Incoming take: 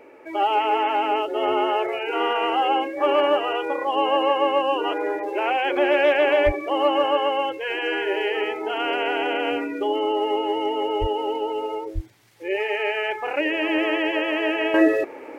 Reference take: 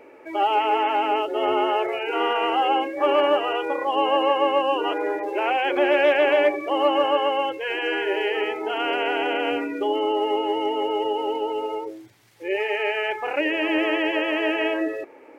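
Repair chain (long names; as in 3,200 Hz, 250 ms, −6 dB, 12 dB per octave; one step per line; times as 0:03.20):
0:06.45–0:06.57: high-pass filter 140 Hz 24 dB per octave
0:11.00–0:11.12: high-pass filter 140 Hz 24 dB per octave
0:11.94–0:12.06: high-pass filter 140 Hz 24 dB per octave
0:14.74: level correction −9 dB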